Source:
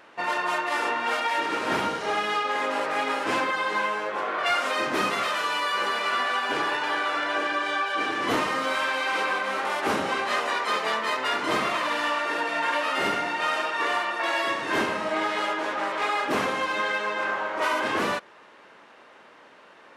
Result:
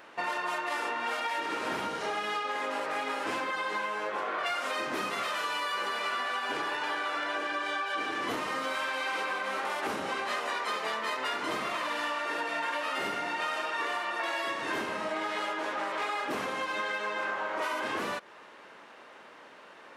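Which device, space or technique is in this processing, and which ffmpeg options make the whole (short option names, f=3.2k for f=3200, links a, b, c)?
ASMR close-microphone chain: -af "lowshelf=f=230:g=7.5,acompressor=threshold=-29dB:ratio=6,lowshelf=f=210:g=-10,highshelf=f=11k:g=5"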